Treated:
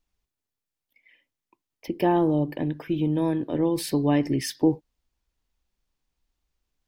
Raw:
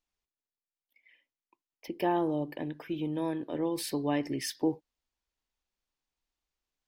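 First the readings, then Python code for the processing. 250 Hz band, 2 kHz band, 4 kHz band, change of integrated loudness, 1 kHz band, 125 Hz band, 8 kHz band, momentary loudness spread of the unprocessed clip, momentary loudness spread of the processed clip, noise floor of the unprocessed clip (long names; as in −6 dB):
+8.5 dB, +4.0 dB, +4.0 dB, +8.0 dB, +5.0 dB, +12.0 dB, +4.0 dB, 9 LU, 8 LU, below −85 dBFS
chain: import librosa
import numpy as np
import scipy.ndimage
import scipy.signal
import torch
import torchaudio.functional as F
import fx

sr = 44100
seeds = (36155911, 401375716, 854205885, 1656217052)

y = fx.low_shelf(x, sr, hz=240.0, db=11.5)
y = F.gain(torch.from_numpy(y), 4.0).numpy()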